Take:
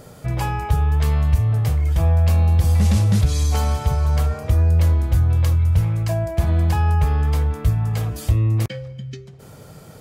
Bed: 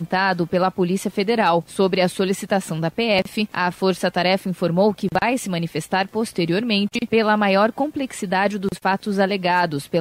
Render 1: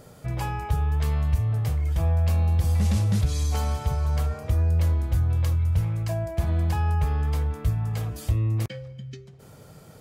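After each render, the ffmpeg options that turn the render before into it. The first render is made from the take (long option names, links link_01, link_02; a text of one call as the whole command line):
ffmpeg -i in.wav -af "volume=-6dB" out.wav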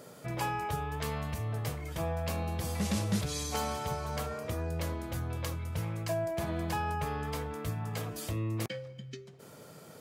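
ffmpeg -i in.wav -af "highpass=200,bandreject=frequency=780:width=16" out.wav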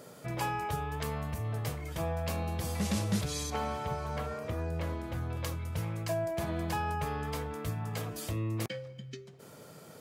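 ffmpeg -i in.wav -filter_complex "[0:a]asettb=1/sr,asplit=3[link_01][link_02][link_03];[link_01]atrim=end=1.034[link_04];[link_02]atrim=start=1.03:end=1.45,asetpts=PTS-STARTPTS,afade=type=in:duration=0.004:curve=qsin,afade=type=out:start_time=0.416:duration=0.004:curve=qsin,equalizer=frequency=3800:width=0.68:gain=-5[link_05];[link_03]atrim=start=1.446[link_06];[link_04][link_05]acrossfade=duration=0.004:curve1=hsin:curve2=qsin[link_07];[link_07][link_06]acrossfade=duration=0.004:curve1=qsin:curve2=hsin,asettb=1/sr,asplit=3[link_08][link_09][link_10];[link_08]atrim=end=3.504[link_11];[link_09]atrim=start=3.5:end=5.37,asetpts=PTS-STARTPTS,afade=type=in:duration=0.004:curve=qsin,afade=type=out:start_time=1.866:duration=0.004:curve=qsin,acrossover=split=3200[link_12][link_13];[link_13]acompressor=threshold=-56dB:ratio=4:attack=1:release=60[link_14];[link_12][link_14]amix=inputs=2:normalize=0[link_15];[link_10]atrim=start=5.366[link_16];[link_11][link_15]acrossfade=duration=0.004:curve1=hsin:curve2=qsin[link_17];[link_17][link_16]acrossfade=duration=0.004:curve1=qsin:curve2=hsin" out.wav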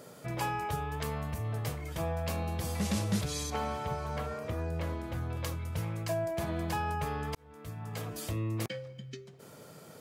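ffmpeg -i in.wav -filter_complex "[0:a]asplit=2[link_01][link_02];[link_01]atrim=end=7.35,asetpts=PTS-STARTPTS,afade=type=out:start_time=7.346:duration=0.004:curve=hsin[link_03];[link_02]atrim=start=7.35,asetpts=PTS-STARTPTS,afade=type=in:duration=0.81[link_04];[link_03][link_04]concat=n=2:v=0:a=1" out.wav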